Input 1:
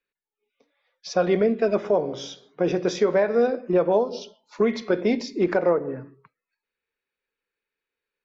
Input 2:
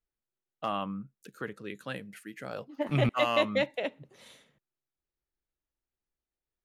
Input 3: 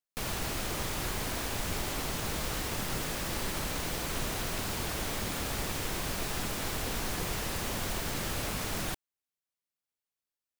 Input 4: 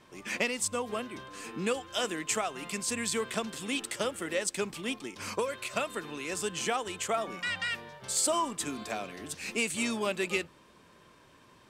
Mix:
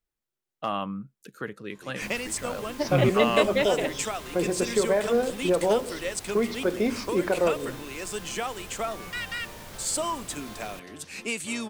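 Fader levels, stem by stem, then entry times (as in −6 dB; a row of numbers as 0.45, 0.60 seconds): −3.5, +3.0, −10.0, −0.5 decibels; 1.75, 0.00, 1.85, 1.70 seconds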